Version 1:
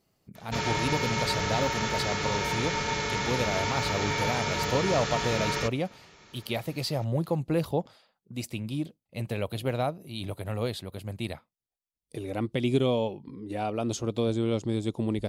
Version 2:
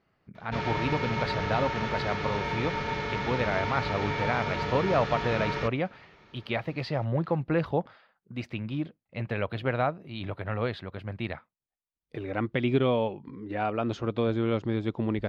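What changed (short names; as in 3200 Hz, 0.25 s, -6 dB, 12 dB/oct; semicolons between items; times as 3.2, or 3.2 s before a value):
speech: add bell 1600 Hz +11 dB 1.3 oct; master: add air absorption 260 m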